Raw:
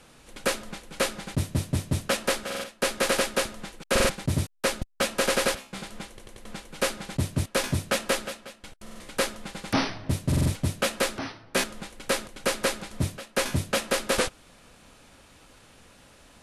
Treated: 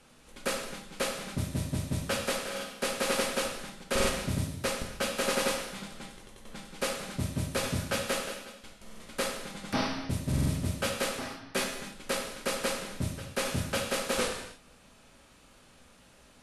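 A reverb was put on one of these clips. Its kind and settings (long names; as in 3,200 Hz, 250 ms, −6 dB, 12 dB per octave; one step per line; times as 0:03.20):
reverb whose tail is shaped and stops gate 330 ms falling, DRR 0.5 dB
level −7 dB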